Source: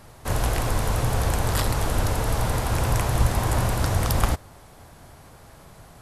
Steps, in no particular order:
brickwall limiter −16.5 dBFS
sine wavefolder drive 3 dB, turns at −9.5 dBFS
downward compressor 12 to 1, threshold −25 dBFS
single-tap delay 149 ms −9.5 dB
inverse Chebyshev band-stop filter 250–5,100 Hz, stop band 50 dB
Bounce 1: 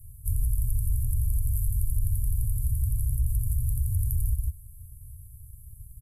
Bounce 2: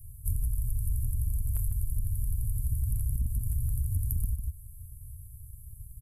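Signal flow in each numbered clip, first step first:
single-tap delay, then brickwall limiter, then downward compressor, then sine wavefolder, then inverse Chebyshev band-stop filter
inverse Chebyshev band-stop filter, then sine wavefolder, then single-tap delay, then downward compressor, then brickwall limiter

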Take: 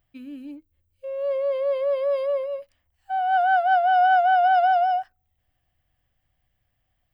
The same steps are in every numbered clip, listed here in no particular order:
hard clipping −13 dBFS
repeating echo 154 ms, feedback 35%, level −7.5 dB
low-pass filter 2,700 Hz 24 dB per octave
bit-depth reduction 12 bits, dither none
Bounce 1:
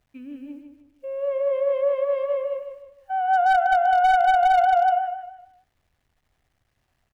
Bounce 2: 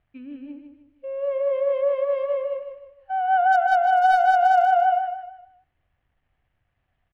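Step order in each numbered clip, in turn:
low-pass filter, then bit-depth reduction, then repeating echo, then hard clipping
bit-depth reduction, then low-pass filter, then hard clipping, then repeating echo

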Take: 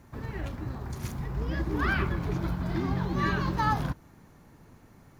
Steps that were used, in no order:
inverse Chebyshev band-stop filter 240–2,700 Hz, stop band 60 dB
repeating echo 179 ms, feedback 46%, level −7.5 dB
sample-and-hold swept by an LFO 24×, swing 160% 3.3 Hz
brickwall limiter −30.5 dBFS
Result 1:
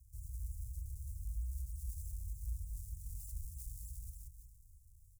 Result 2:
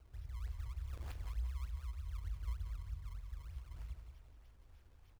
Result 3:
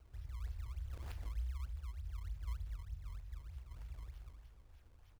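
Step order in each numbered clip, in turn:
repeating echo, then sample-and-hold swept by an LFO, then brickwall limiter, then inverse Chebyshev band-stop filter
brickwall limiter, then inverse Chebyshev band-stop filter, then sample-and-hold swept by an LFO, then repeating echo
repeating echo, then brickwall limiter, then inverse Chebyshev band-stop filter, then sample-and-hold swept by an LFO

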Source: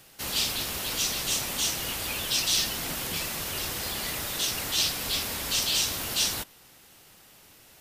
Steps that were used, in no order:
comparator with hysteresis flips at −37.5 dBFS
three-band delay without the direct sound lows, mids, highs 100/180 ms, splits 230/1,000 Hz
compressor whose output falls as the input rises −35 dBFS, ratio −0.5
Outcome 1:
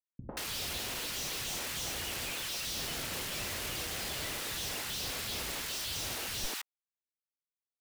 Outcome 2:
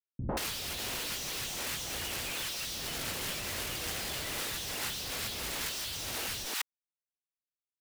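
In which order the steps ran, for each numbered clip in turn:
comparator with hysteresis, then compressor whose output falls as the input rises, then three-band delay without the direct sound
comparator with hysteresis, then three-band delay without the direct sound, then compressor whose output falls as the input rises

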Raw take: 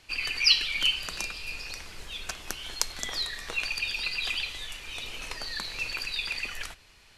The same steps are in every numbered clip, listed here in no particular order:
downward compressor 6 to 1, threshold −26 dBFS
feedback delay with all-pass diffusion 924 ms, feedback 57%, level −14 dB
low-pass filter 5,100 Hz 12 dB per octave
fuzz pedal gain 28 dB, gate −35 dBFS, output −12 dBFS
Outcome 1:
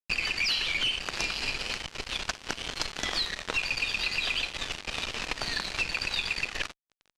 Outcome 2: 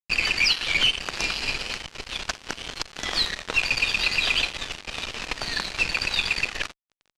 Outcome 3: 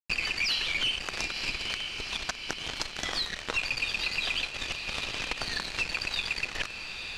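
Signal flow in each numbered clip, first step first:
feedback delay with all-pass diffusion, then fuzz pedal, then low-pass filter, then downward compressor
feedback delay with all-pass diffusion, then downward compressor, then fuzz pedal, then low-pass filter
fuzz pedal, then feedback delay with all-pass diffusion, then downward compressor, then low-pass filter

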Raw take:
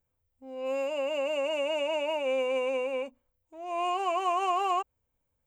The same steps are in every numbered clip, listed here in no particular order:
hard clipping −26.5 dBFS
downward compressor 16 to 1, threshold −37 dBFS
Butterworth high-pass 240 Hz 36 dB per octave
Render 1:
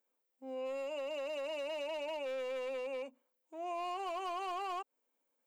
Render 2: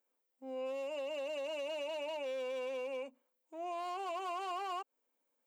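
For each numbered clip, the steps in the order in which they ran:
Butterworth high-pass, then hard clipping, then downward compressor
hard clipping, then downward compressor, then Butterworth high-pass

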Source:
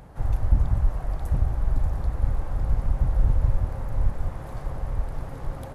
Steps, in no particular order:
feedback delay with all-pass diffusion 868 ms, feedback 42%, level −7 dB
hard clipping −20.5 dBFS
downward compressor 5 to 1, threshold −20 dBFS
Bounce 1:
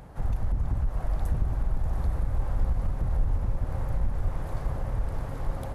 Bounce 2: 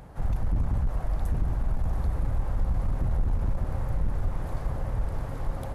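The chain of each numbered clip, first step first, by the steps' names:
downward compressor, then hard clipping, then feedback delay with all-pass diffusion
hard clipping, then feedback delay with all-pass diffusion, then downward compressor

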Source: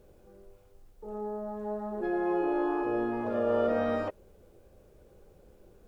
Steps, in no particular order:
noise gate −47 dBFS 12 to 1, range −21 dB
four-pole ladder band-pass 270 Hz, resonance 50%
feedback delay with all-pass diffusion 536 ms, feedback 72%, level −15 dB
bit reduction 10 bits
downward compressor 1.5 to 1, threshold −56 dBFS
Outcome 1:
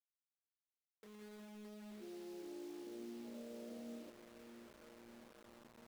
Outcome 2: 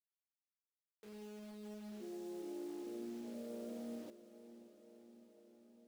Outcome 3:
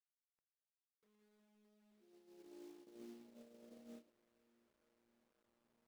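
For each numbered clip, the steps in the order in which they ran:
feedback delay with all-pass diffusion, then noise gate, then downward compressor, then four-pole ladder band-pass, then bit reduction
noise gate, then four-pole ladder band-pass, then downward compressor, then bit reduction, then feedback delay with all-pass diffusion
feedback delay with all-pass diffusion, then downward compressor, then four-pole ladder band-pass, then bit reduction, then noise gate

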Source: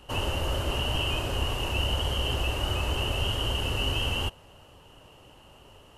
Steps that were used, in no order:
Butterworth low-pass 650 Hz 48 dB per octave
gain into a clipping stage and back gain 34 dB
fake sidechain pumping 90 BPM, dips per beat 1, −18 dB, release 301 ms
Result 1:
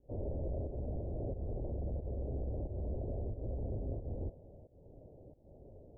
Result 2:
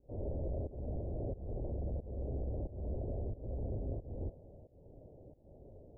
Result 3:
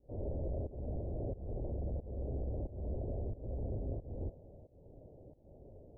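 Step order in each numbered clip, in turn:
fake sidechain pumping, then gain into a clipping stage and back, then Butterworth low-pass
gain into a clipping stage and back, then fake sidechain pumping, then Butterworth low-pass
gain into a clipping stage and back, then Butterworth low-pass, then fake sidechain pumping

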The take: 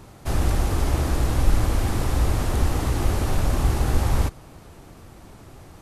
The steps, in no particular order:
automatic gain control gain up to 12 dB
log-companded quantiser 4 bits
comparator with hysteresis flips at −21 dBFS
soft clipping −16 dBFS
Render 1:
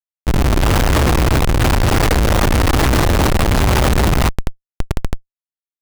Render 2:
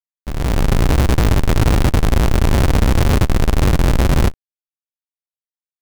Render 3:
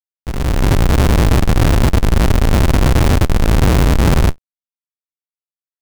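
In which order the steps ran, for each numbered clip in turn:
log-companded quantiser, then soft clipping, then automatic gain control, then comparator with hysteresis
soft clipping, then comparator with hysteresis, then log-companded quantiser, then automatic gain control
comparator with hysteresis, then soft clipping, then automatic gain control, then log-companded quantiser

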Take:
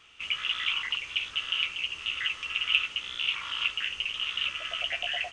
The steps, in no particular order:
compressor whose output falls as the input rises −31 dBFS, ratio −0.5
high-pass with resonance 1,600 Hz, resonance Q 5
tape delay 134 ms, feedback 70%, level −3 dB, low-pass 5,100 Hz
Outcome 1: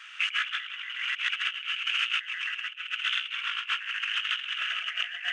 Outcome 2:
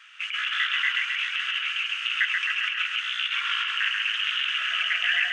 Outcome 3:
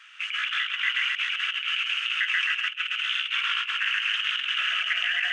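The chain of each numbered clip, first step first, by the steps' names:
tape delay, then high-pass with resonance, then compressor whose output falls as the input rises
compressor whose output falls as the input rises, then tape delay, then high-pass with resonance
tape delay, then compressor whose output falls as the input rises, then high-pass with resonance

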